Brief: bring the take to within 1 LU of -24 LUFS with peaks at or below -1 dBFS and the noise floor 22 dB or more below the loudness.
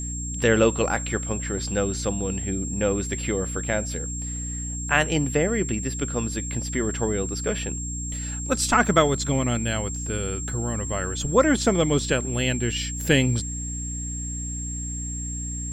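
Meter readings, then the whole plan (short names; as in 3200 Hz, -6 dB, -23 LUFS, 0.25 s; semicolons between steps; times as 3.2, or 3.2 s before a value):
hum 60 Hz; harmonics up to 300 Hz; hum level -30 dBFS; steady tone 7500 Hz; tone level -32 dBFS; loudness -25.0 LUFS; peak -4.0 dBFS; loudness target -24.0 LUFS
-> de-hum 60 Hz, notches 5; notch 7500 Hz, Q 30; gain +1 dB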